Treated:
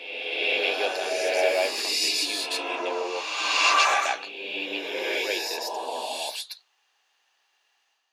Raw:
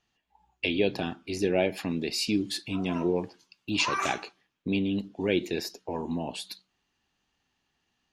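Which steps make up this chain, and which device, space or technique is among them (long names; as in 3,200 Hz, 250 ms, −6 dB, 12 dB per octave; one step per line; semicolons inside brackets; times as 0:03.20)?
ghost voice (reversed playback; convolution reverb RT60 1.9 s, pre-delay 107 ms, DRR −5 dB; reversed playback; high-pass filter 540 Hz 24 dB per octave)
level +2.5 dB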